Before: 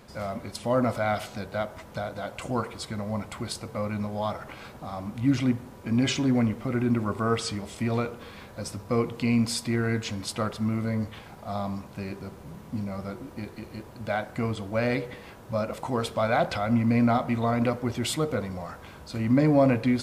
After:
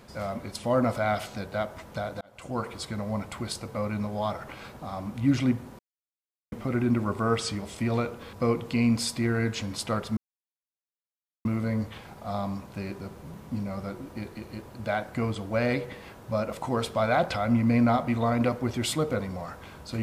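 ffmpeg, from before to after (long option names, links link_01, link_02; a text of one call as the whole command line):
ffmpeg -i in.wav -filter_complex "[0:a]asplit=6[link_01][link_02][link_03][link_04][link_05][link_06];[link_01]atrim=end=2.21,asetpts=PTS-STARTPTS,afade=type=out:start_time=2.206:duration=0.004:curve=hsin[link_07];[link_02]atrim=start=2.21:end=5.79,asetpts=PTS-STARTPTS,afade=type=in:duration=0.5,afade=type=out:start_time=3.576:duration=0.004:curve=hsin[link_08];[link_03]atrim=start=5.79:end=6.52,asetpts=PTS-STARTPTS,volume=0[link_09];[link_04]atrim=start=6.52:end=8.332,asetpts=PTS-STARTPTS,afade=type=in:duration=0.004:curve=hsin[link_10];[link_05]atrim=start=8.818:end=10.66,asetpts=PTS-STARTPTS,afade=type=out:start_time=1.838:duration=0.004:curve=hsin,apad=pad_dur=1.28[link_11];[link_06]atrim=start=10.66,asetpts=PTS-STARTPTS,afade=type=in:duration=0.004:curve=hsin[link_12];[link_07][link_08][link_09][link_10]concat=n=4:v=0:a=1[link_13];[link_11][link_12]concat=n=2:v=0:a=1[link_14];[link_13][link_14]acrossfade=duration=0.004:curve1=hsin:curve2=hsin" out.wav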